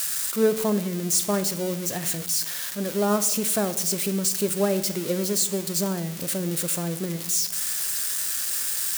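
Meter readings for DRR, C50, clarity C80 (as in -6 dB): 11.0 dB, 14.0 dB, 16.0 dB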